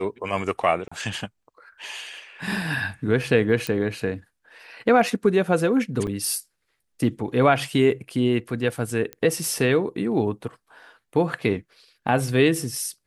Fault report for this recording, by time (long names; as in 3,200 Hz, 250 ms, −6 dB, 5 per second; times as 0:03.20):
0:00.88–0:00.92: drop-out 35 ms
0:03.67: click −11 dBFS
0:06.07–0:06.08: drop-out 5.5 ms
0:09.13: click −18 dBFS